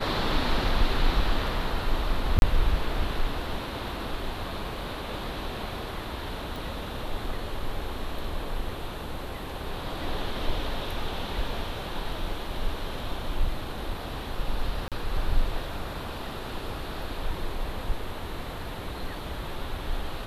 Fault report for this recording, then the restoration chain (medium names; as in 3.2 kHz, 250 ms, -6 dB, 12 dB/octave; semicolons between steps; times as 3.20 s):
2.39–2.42 s: dropout 31 ms
6.56 s: pop
14.88–14.92 s: dropout 37 ms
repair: de-click; interpolate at 2.39 s, 31 ms; interpolate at 14.88 s, 37 ms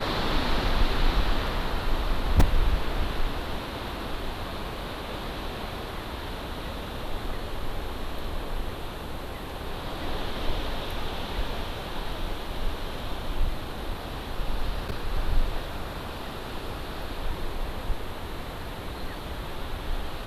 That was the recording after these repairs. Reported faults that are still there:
6.56 s: pop